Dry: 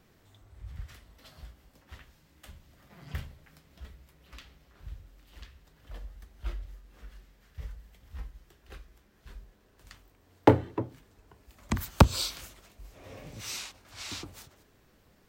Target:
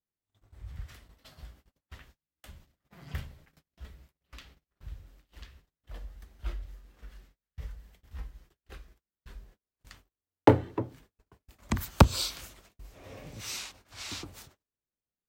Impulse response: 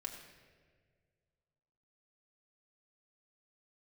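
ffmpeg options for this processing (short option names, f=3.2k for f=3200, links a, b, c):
-af "agate=range=-36dB:threshold=-55dB:ratio=16:detection=peak"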